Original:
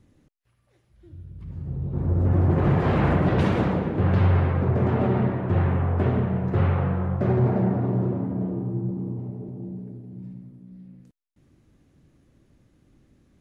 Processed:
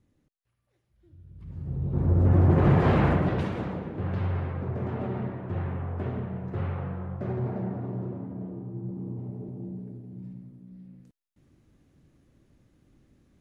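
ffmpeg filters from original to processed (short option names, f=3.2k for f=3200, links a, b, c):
-af "volume=7.5dB,afade=t=in:st=1.19:d=0.76:silence=0.298538,afade=t=out:st=2.88:d=0.61:silence=0.316228,afade=t=in:st=8.72:d=0.67:silence=0.446684"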